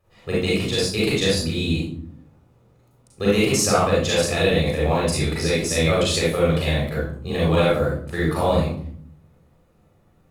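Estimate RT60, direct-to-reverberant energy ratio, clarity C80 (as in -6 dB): 0.60 s, -7.0 dB, 6.0 dB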